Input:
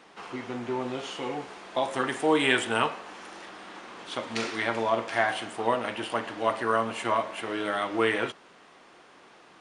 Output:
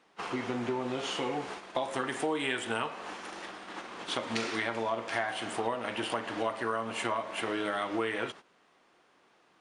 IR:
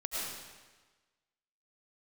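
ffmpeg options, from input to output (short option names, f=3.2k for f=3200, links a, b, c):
-af "agate=range=-16dB:threshold=-43dB:ratio=16:detection=peak,acompressor=threshold=-34dB:ratio=5,volume=4.5dB"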